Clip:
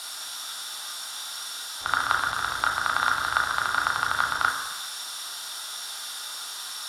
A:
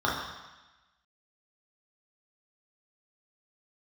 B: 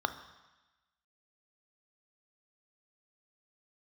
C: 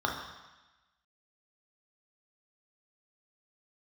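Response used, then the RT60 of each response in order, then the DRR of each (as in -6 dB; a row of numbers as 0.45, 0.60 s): C; 1.1, 1.1, 1.1 s; -5.5, 9.0, -1.0 dB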